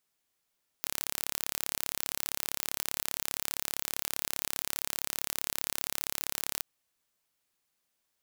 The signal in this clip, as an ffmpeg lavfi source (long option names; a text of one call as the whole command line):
ffmpeg -f lavfi -i "aevalsrc='0.562*eq(mod(n,1253),0)':duration=5.79:sample_rate=44100" out.wav